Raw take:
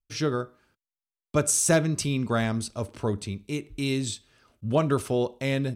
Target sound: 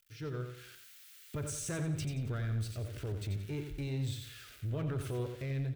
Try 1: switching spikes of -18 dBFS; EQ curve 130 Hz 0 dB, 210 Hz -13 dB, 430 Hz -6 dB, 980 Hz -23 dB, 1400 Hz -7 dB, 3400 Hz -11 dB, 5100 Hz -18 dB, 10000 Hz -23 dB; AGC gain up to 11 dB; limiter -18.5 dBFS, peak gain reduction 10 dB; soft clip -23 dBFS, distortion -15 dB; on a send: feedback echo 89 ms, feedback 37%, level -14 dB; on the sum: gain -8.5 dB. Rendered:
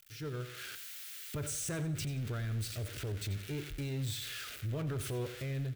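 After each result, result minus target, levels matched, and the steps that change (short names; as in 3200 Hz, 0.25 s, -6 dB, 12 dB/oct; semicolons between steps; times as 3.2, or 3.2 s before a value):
switching spikes: distortion +10 dB; echo-to-direct -6.5 dB
change: switching spikes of -28.5 dBFS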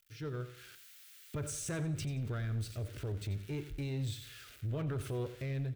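echo-to-direct -6.5 dB
change: feedback echo 89 ms, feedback 37%, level -7.5 dB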